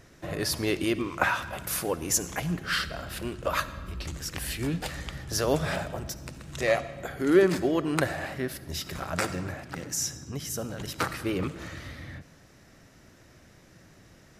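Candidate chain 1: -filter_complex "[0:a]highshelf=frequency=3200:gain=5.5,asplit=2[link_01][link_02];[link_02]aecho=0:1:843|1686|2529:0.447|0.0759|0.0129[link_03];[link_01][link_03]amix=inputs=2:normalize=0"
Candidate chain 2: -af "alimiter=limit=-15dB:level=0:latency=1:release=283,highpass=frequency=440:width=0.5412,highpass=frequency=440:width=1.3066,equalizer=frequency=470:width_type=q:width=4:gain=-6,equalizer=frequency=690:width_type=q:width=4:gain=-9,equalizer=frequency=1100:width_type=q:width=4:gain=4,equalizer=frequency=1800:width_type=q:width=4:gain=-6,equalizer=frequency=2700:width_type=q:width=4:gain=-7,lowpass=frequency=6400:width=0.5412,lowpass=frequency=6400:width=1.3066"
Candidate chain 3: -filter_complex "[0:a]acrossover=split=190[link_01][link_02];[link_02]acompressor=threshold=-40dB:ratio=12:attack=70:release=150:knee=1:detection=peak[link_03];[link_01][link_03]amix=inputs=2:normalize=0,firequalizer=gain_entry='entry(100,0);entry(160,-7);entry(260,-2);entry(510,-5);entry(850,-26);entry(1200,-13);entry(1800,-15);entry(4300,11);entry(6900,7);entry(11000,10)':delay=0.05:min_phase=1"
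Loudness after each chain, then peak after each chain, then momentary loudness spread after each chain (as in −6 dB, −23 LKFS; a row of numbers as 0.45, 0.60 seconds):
−27.5, −36.5, −34.0 LKFS; −5.5, −16.5, −11.0 dBFS; 13, 12, 23 LU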